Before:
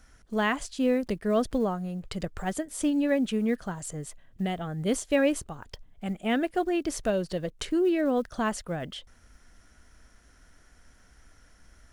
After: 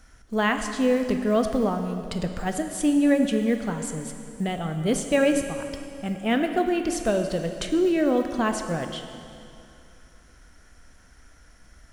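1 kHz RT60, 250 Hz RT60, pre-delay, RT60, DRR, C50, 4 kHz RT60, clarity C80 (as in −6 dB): 2.6 s, 2.6 s, 7 ms, 2.6 s, 5.5 dB, 7.0 dB, 2.5 s, 8.0 dB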